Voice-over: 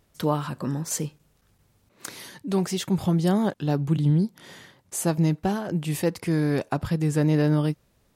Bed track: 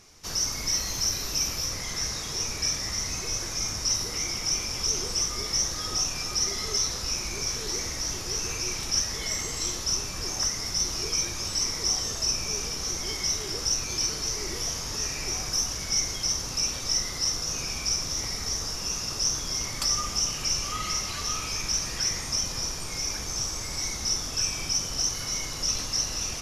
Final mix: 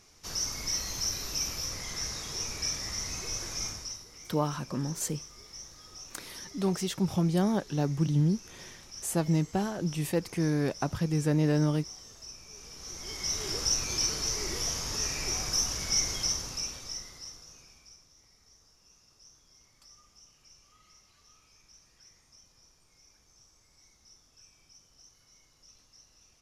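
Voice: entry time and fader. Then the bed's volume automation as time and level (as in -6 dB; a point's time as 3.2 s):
4.10 s, -4.5 dB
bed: 3.66 s -5 dB
4.05 s -19.5 dB
12.48 s -19.5 dB
13.47 s -1.5 dB
16.21 s -1.5 dB
18.12 s -31 dB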